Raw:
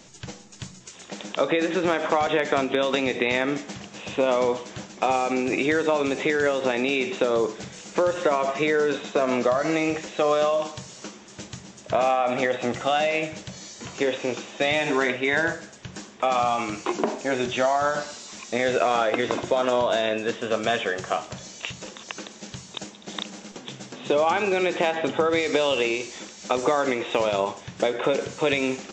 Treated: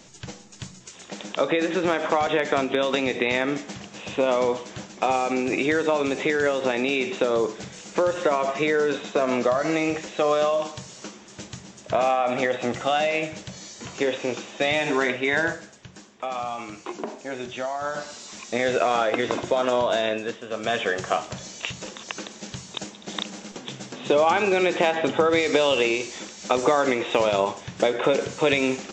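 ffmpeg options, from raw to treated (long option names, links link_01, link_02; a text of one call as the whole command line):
ffmpeg -i in.wav -af "volume=18.5dB,afade=type=out:start_time=15.45:duration=0.49:silence=0.421697,afade=type=in:start_time=17.78:duration=0.46:silence=0.421697,afade=type=out:start_time=20.09:duration=0.37:silence=0.354813,afade=type=in:start_time=20.46:duration=0.44:silence=0.281838" out.wav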